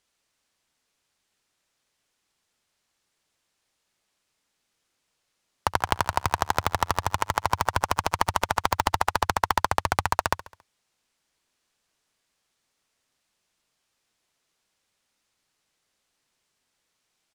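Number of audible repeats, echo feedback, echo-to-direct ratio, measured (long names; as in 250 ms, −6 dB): 3, 52%, −16.5 dB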